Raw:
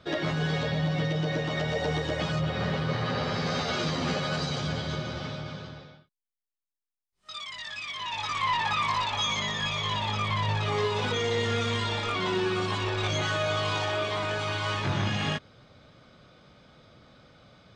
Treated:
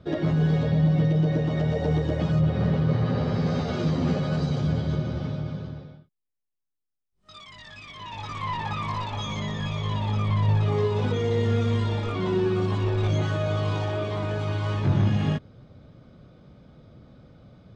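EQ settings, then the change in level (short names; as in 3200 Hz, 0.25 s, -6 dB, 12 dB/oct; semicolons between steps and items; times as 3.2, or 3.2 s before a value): tilt shelf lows +9 dB, about 640 Hz; 0.0 dB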